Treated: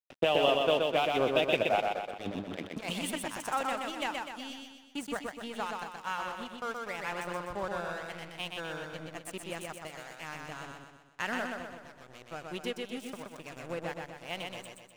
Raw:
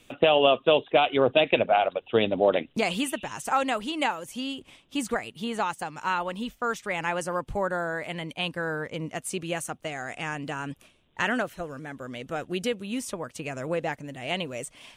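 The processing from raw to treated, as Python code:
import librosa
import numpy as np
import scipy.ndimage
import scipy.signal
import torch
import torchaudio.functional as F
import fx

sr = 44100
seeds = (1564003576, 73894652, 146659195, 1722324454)

y = fx.over_compress(x, sr, threshold_db=-28.0, ratio=-0.5, at=(1.8, 3.5))
y = np.sign(y) * np.maximum(np.abs(y) - 10.0 ** (-36.0 / 20.0), 0.0)
y = fx.echo_feedback(y, sr, ms=125, feedback_pct=50, wet_db=-3.5)
y = F.gain(torch.from_numpy(y), -6.5).numpy()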